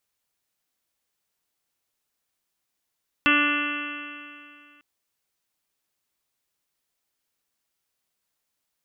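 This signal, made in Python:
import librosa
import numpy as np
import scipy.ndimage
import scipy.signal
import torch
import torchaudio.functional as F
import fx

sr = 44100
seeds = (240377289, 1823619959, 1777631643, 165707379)

y = fx.additive_stiff(sr, length_s=1.55, hz=291.0, level_db=-22.5, upper_db=(-11.5, -18, -1.0, 0.0, -4.5, -3, -11, 3.5, -7.0, -10.5), decay_s=2.41, stiffness=0.00054)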